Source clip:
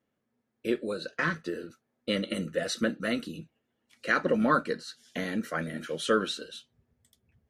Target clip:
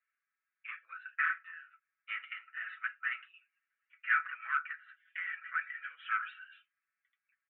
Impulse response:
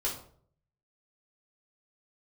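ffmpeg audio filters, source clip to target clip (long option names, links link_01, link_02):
-af "aecho=1:1:6.1:0.83,aresample=8000,asoftclip=type=tanh:threshold=-20.5dB,aresample=44100,asuperpass=centerf=1800:order=8:qfactor=1.4"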